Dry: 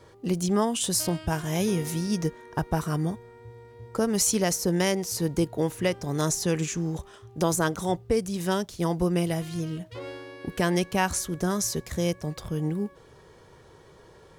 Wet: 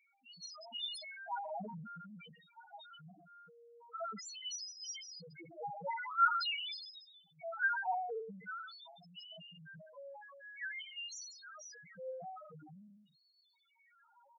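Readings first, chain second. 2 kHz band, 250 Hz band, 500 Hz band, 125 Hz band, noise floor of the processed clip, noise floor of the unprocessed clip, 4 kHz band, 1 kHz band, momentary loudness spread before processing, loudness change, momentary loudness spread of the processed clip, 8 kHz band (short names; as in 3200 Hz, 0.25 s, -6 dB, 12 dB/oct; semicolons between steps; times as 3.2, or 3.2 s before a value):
-4.5 dB, -30.0 dB, -20.5 dB, -30.0 dB, -73 dBFS, -53 dBFS, -8.0 dB, -6.0 dB, 9 LU, -12.5 dB, 21 LU, -21.0 dB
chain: notches 50/100/150/200/250/300 Hz; shoebox room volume 270 m³, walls mixed, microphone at 0.58 m; dynamic EQ 540 Hz, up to -6 dB, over -41 dBFS, Q 4.3; comb 1.4 ms, depth 58%; LFO band-pass sine 0.47 Hz 980–4600 Hz; spectral gain 5.89–6.98, 870–5400 Hz +12 dB; echo 0.146 s -14.5 dB; loudest bins only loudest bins 1; transient shaper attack -1 dB, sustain +6 dB; gain +6 dB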